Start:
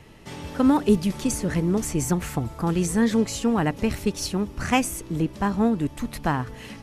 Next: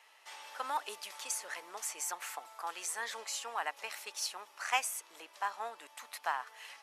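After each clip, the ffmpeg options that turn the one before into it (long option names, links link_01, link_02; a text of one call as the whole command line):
ffmpeg -i in.wav -af "highpass=frequency=760:width=0.5412,highpass=frequency=760:width=1.3066,volume=-6.5dB" out.wav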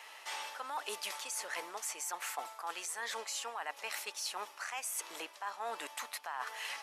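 ffmpeg -i in.wav -af "alimiter=level_in=4.5dB:limit=-24dB:level=0:latency=1:release=98,volume=-4.5dB,areverse,acompressor=threshold=-47dB:ratio=10,areverse,volume=10.5dB" out.wav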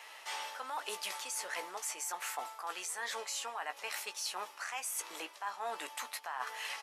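ffmpeg -i in.wav -filter_complex "[0:a]asplit=2[link_01][link_02];[link_02]adelay=16,volume=-9dB[link_03];[link_01][link_03]amix=inputs=2:normalize=0" out.wav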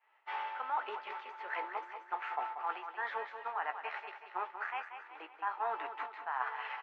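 ffmpeg -i in.wav -af "highpass=360,equalizer=frequency=370:width_type=q:width=4:gain=6,equalizer=frequency=540:width_type=q:width=4:gain=-3,equalizer=frequency=870:width_type=q:width=4:gain=5,equalizer=frequency=1400:width_type=q:width=4:gain=4,lowpass=frequency=2500:width=0.5412,lowpass=frequency=2500:width=1.3066,agate=range=-33dB:threshold=-38dB:ratio=3:detection=peak,aecho=1:1:186|372|558|744|930|1116:0.355|0.185|0.0959|0.0499|0.0259|0.0135,volume=1dB" out.wav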